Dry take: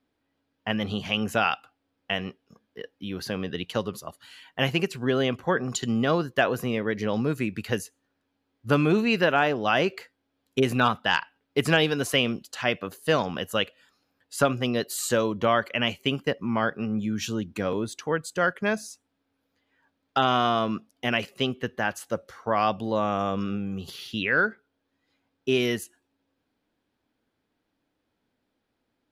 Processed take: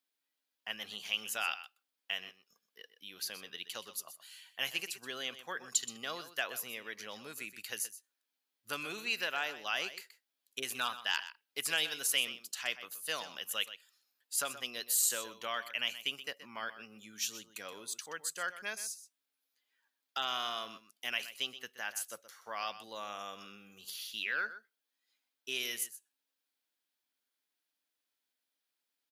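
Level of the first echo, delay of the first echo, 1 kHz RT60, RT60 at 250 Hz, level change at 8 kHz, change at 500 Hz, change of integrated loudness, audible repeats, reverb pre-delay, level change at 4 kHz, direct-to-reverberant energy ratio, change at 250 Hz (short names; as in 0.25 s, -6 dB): -13.5 dB, 0.125 s, none, none, +2.0 dB, -21.0 dB, -10.5 dB, 1, none, -5.5 dB, none, -27.0 dB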